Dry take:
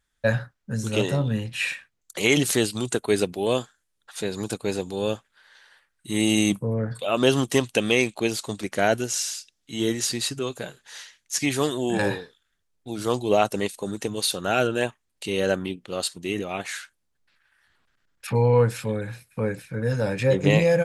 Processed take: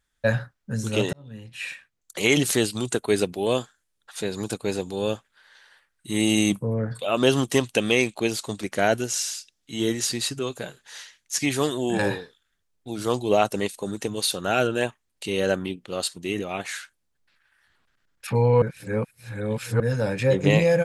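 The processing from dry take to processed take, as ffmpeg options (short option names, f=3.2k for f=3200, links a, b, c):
-filter_complex "[0:a]asplit=4[a][b][c][d];[a]atrim=end=1.13,asetpts=PTS-STARTPTS,afade=t=out:st=1.126:d=0.004:c=hsin[e];[b]atrim=start=1.13:end=18.622,asetpts=PTS-STARTPTS,afade=t=in:d=1.11[f];[c]atrim=start=18.618:end=19.802,asetpts=PTS-STARTPTS,areverse[g];[d]atrim=start=19.798[h];[e][f]concat=n=2:v=0:a=1[i];[i][g]acrossfade=d=0.004:c1=hsin:c2=hsin[j];[j][h]acrossfade=d=0.004:c1=hsin:c2=hsin"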